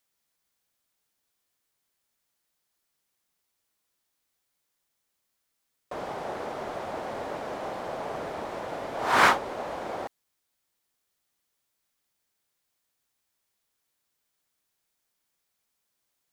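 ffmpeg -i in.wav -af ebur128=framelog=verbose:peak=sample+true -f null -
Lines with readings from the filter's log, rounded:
Integrated loudness:
  I:         -29.5 LUFS
  Threshold: -39.7 LUFS
Loudness range:
  LRA:        15.7 LU
  Threshold: -51.7 LUFS
  LRA low:   -44.0 LUFS
  LRA high:  -28.3 LUFS
Sample peak:
  Peak:       -5.1 dBFS
True peak:
  Peak:       -5.2 dBFS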